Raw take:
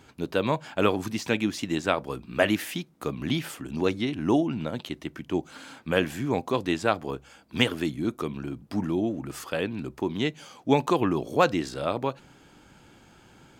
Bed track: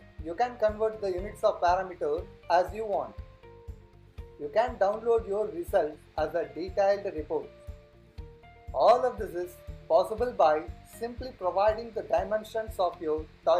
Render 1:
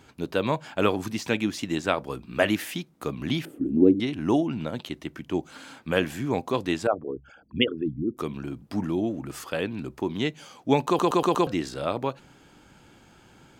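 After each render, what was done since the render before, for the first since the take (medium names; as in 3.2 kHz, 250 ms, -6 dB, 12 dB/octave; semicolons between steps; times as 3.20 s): 3.45–4.00 s: FFT filter 150 Hz 0 dB, 290 Hz +14 dB, 590 Hz -3 dB, 990 Hz -18 dB, 2.7 kHz -21 dB, 5.4 kHz -28 dB, 11 kHz -15 dB; 6.87–8.17 s: resonances exaggerated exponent 3; 10.87 s: stutter in place 0.12 s, 5 plays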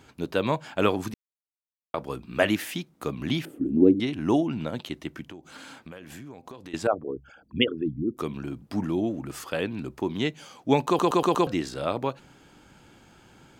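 1.14–1.94 s: mute; 5.28–6.74 s: compression 16:1, threshold -38 dBFS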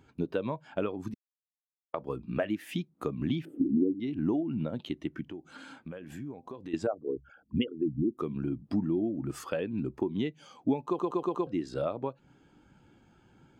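compression 8:1, threshold -32 dBFS, peak gain reduction 19 dB; spectral contrast expander 1.5:1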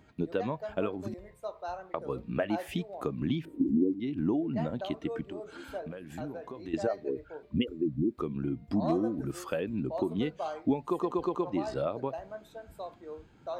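add bed track -13.5 dB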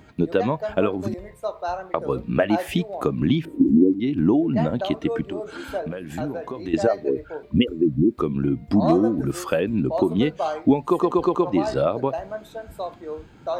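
trim +10.5 dB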